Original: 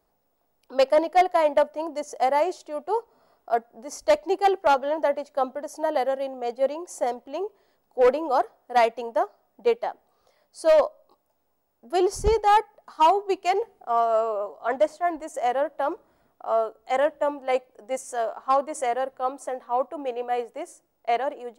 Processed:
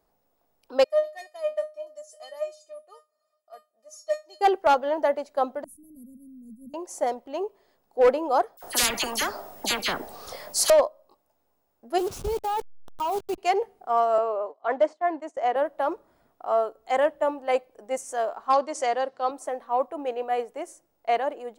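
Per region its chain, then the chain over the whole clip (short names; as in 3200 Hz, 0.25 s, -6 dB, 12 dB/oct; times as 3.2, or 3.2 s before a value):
0.84–4.41 HPF 220 Hz + high shelf 3000 Hz +8.5 dB + resonator 610 Hz, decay 0.21 s, mix 100%
5.64–6.74 Chebyshev band-stop 230–9200 Hz, order 4 + low shelf 190 Hz +9.5 dB
8.57–10.7 high shelf 4100 Hz +5.5 dB + dispersion lows, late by 59 ms, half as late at 2100 Hz + spectral compressor 10:1
11.98–13.38 level-crossing sampler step -30 dBFS + bell 1900 Hz -10 dB 0.43 oct + level quantiser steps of 13 dB
14.18–15.56 steep high-pass 230 Hz + gate -41 dBFS, range -16 dB + air absorption 110 m
18.53–19.31 BPF 140–6900 Hz + bell 4800 Hz +11 dB 0.99 oct
whole clip: dry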